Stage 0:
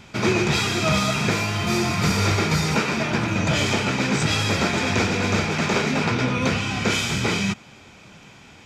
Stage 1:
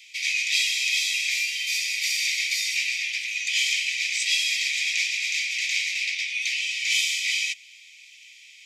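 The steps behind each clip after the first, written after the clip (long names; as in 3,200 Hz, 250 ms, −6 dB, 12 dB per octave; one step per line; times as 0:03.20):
Butterworth high-pass 2,000 Hz 96 dB per octave
level +2.5 dB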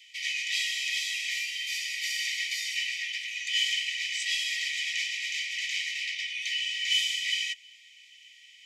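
hollow resonant body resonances 1,900/3,000 Hz, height 16 dB, ringing for 45 ms
level −8 dB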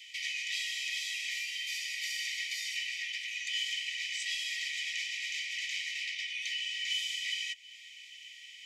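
downward compressor 2 to 1, threshold −44 dBFS, peak gain reduction 12 dB
level +3.5 dB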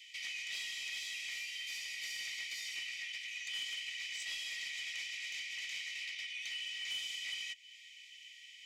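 soft clipping −28.5 dBFS, distortion −20 dB
level −4.5 dB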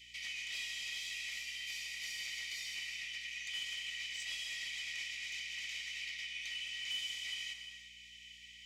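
mains hum 60 Hz, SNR 28 dB
reverb whose tail is shaped and stops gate 370 ms flat, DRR 5 dB
level −1.5 dB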